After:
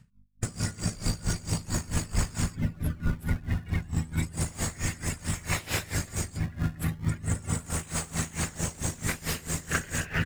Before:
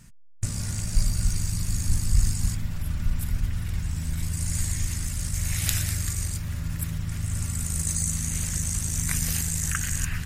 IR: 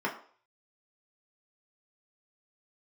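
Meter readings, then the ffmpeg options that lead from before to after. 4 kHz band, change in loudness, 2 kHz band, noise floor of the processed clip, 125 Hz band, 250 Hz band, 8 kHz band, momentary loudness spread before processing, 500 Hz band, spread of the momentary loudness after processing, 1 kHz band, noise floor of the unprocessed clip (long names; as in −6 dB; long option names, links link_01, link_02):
−1.5 dB, −3.5 dB, +3.0 dB, −49 dBFS, −3.0 dB, +2.5 dB, −6.0 dB, 6 LU, +10.5 dB, 2 LU, +6.5 dB, −33 dBFS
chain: -filter_complex "[0:a]bandreject=frequency=50:width_type=h:width=6,bandreject=frequency=100:width_type=h:width=6,bandreject=frequency=150:width_type=h:width=6,bandreject=frequency=200:width_type=h:width=6,afftdn=noise_reduction=20:noise_floor=-41,bandreject=frequency=6100:width=9.2,asplit=2[link_01][link_02];[link_02]highpass=frequency=720:poles=1,volume=35dB,asoftclip=type=tanh:threshold=-4dB[link_03];[link_01][link_03]amix=inputs=2:normalize=0,lowpass=frequency=2200:poles=1,volume=-6dB,asplit=2[link_04][link_05];[link_05]acrusher=samples=28:mix=1:aa=0.000001:lfo=1:lforange=44.8:lforate=0.34,volume=-6dB[link_06];[link_04][link_06]amix=inputs=2:normalize=0,adynamicequalizer=threshold=0.0112:dfrequency=9700:dqfactor=3.4:tfrequency=9700:tqfactor=3.4:attack=5:release=100:ratio=0.375:range=2:mode=cutabove:tftype=bell,aeval=exprs='val(0)+0.00447*(sin(2*PI*50*n/s)+sin(2*PI*2*50*n/s)/2+sin(2*PI*3*50*n/s)/3+sin(2*PI*4*50*n/s)/4+sin(2*PI*5*50*n/s)/5)':channel_layout=same,asplit=2[link_07][link_08];[link_08]adelay=555,lowpass=frequency=1600:poles=1,volume=-24dB,asplit=2[link_09][link_10];[link_10]adelay=555,lowpass=frequency=1600:poles=1,volume=0.34[link_11];[link_07][link_09][link_11]amix=inputs=3:normalize=0,aeval=exprs='val(0)*pow(10,-21*(0.5-0.5*cos(2*PI*4.5*n/s))/20)':channel_layout=same,volume=-8.5dB"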